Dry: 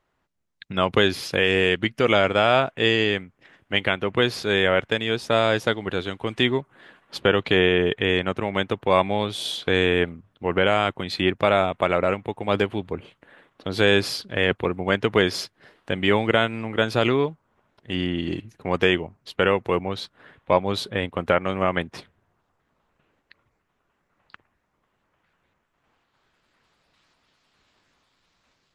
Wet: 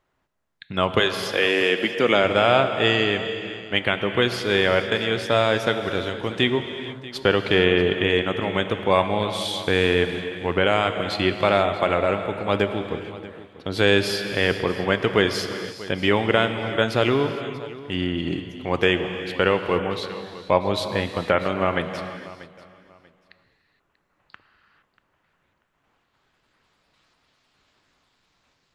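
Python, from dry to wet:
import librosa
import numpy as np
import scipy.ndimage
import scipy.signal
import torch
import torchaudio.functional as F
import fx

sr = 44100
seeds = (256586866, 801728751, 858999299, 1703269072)

y = fx.highpass(x, sr, hz=fx.line((0.99, 440.0), (2.23, 120.0)), slope=24, at=(0.99, 2.23), fade=0.02)
y = fx.echo_feedback(y, sr, ms=638, feedback_pct=23, wet_db=-18.0)
y = fx.rev_gated(y, sr, seeds[0], gate_ms=490, shape='flat', drr_db=7.5)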